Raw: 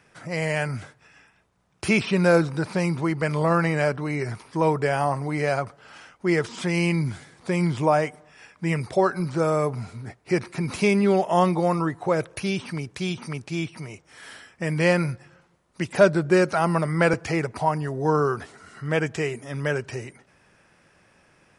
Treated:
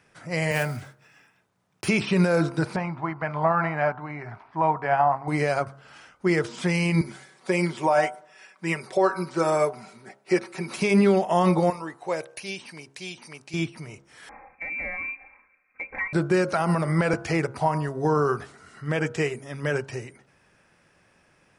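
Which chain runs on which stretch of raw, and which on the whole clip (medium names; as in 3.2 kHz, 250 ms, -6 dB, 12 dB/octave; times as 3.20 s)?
0.51–1.88 s: block-companded coder 5-bit + high-pass 95 Hz 24 dB/octave
2.76–5.28 s: low-pass 1.8 kHz + resonant low shelf 590 Hz -6 dB, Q 3
7.01–10.78 s: high-pass 300 Hz + comb 5.3 ms, depth 59%
11.70–13.54 s: high-pass 800 Hz 6 dB/octave + peaking EQ 1.3 kHz -8.5 dB 0.52 oct + band-stop 3.4 kHz, Q 18
14.29–16.13 s: frequency inversion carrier 2.5 kHz + comb 3.8 ms, depth 67% + compression 4:1, threshold -30 dBFS
whole clip: de-hum 68.15 Hz, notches 23; peak limiter -15 dBFS; upward expansion 1.5:1, over -34 dBFS; trim +4.5 dB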